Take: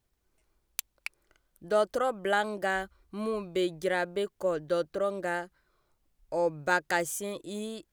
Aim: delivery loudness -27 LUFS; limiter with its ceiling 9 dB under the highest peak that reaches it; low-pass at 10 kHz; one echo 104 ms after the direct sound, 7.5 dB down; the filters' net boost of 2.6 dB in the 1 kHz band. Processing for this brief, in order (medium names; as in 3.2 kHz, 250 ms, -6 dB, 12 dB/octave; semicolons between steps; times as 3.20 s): low-pass 10 kHz; peaking EQ 1 kHz +3.5 dB; peak limiter -19 dBFS; delay 104 ms -7.5 dB; trim +4 dB